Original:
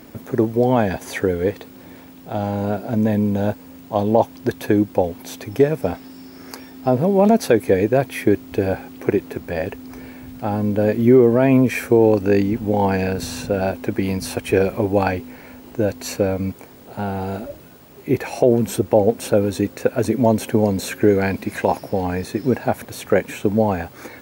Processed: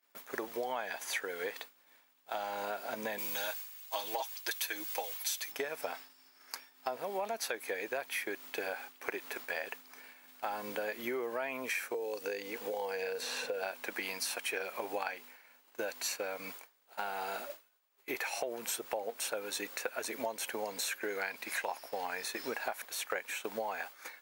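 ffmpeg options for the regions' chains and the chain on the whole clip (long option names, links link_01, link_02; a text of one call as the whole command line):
ffmpeg -i in.wav -filter_complex "[0:a]asettb=1/sr,asplit=3[link_01][link_02][link_03];[link_01]atrim=end=3.184[link_04];[link_02]atrim=start=3.18:end=5.52,asetpts=PTS-STARTPTS,afade=type=in:duration=0.004:curve=qsin,afade=type=out:start_time=2.336:duration=0.004:curve=qsin,tiltshelf=frequency=1500:gain=-9,aecho=1:1:6.3:0.9,atrim=end_sample=103194[link_05];[link_03]atrim=start=5.516[link_06];[link_04][link_05]acrossfade=duration=0.004:curve1=hsin:curve2=qsin[link_07];[link_07][link_06]acrossfade=duration=0.004:curve1=qsin:curve2=hsin,asettb=1/sr,asplit=3[link_08][link_09][link_10];[link_08]atrim=end=11.944[link_11];[link_09]atrim=start=11.94:end=13.63,asetpts=PTS-STARTPTS,afade=type=in:duration=0.004:curve=qsin,afade=type=out:start_time=1.686:duration=0.004:curve=qsin,bandreject=frequency=1300:width=22,acrossover=split=380|3700[link_12][link_13][link_14];[link_12]acompressor=threshold=-25dB:ratio=4[link_15];[link_13]acompressor=threshold=-29dB:ratio=4[link_16];[link_14]acompressor=threshold=-45dB:ratio=4[link_17];[link_15][link_16][link_17]amix=inputs=3:normalize=0,equalizer=frequency=480:width=4.9:gain=14.5[link_18];[link_10]atrim=start=13.626[link_19];[link_11][link_18]acrossfade=duration=0.004:curve1=hsin:curve2=qsin[link_20];[link_20][link_19]acrossfade=duration=0.004:curve1=qsin:curve2=hsin,agate=range=-33dB:threshold=-28dB:ratio=3:detection=peak,highpass=1100,acompressor=threshold=-36dB:ratio=6,volume=2dB" out.wav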